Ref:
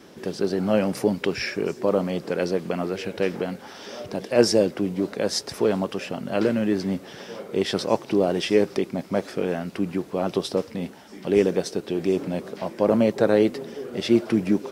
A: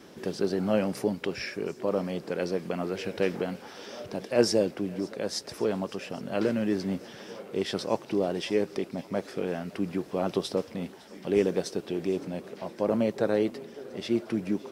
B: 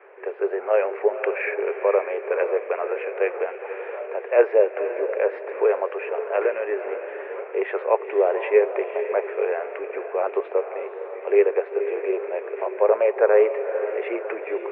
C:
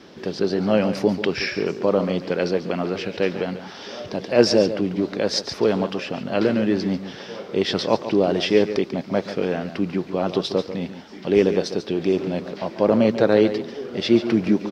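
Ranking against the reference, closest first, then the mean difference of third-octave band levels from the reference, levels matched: A, C, B; 1.5 dB, 3.5 dB, 14.5 dB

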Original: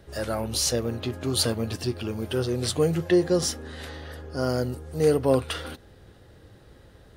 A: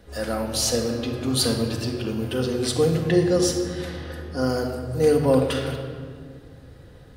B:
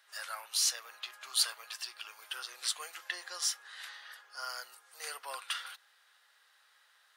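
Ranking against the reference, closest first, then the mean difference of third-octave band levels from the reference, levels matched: A, B; 4.0 dB, 15.0 dB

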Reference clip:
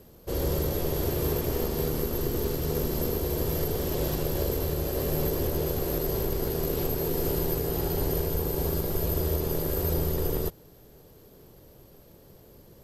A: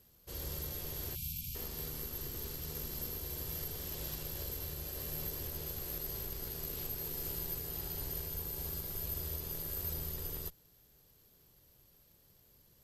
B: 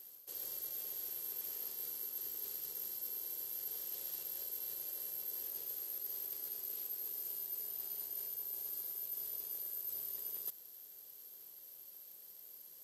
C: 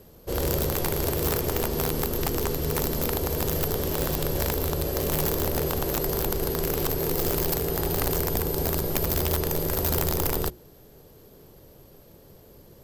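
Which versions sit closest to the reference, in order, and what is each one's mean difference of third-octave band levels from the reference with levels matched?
C, A, B; 2.5 dB, 5.0 dB, 13.0 dB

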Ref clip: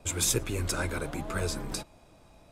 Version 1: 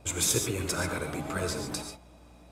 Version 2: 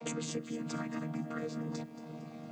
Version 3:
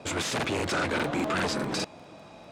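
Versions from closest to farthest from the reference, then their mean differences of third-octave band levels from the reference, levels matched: 1, 3, 2; 3.0 dB, 6.0 dB, 9.0 dB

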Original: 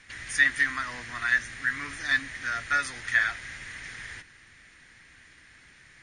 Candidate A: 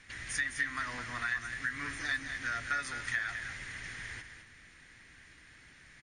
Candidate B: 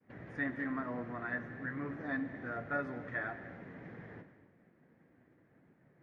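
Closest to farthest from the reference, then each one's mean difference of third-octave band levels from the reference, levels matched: A, B; 4.5 dB, 12.5 dB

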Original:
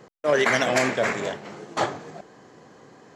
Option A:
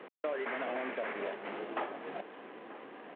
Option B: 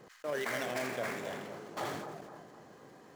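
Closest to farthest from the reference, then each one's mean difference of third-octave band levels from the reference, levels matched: B, A; 7.5 dB, 10.0 dB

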